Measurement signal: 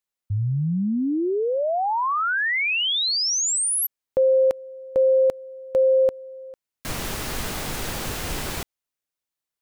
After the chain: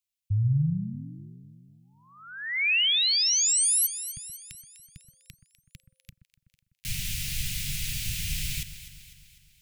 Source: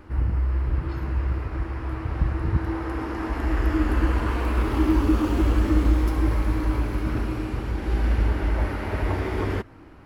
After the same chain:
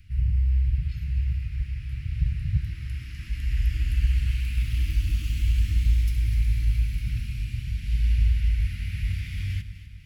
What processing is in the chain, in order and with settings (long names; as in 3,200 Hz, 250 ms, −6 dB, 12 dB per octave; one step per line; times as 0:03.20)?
elliptic band-stop filter 150–2,400 Hz, stop band 70 dB
delay that swaps between a low-pass and a high-pass 125 ms, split 1,500 Hz, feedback 72%, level −10 dB